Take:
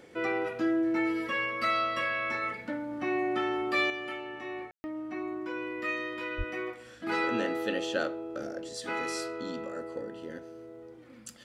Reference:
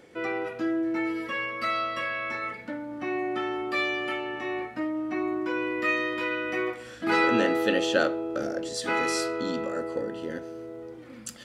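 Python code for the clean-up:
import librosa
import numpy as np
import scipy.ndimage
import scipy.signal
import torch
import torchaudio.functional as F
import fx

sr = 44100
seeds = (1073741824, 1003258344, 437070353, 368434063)

y = fx.fix_deplosive(x, sr, at_s=(6.37,))
y = fx.fix_ambience(y, sr, seeds[0], print_start_s=10.93, print_end_s=11.43, start_s=4.71, end_s=4.84)
y = fx.gain(y, sr, db=fx.steps((0.0, 0.0), (3.9, 7.0)))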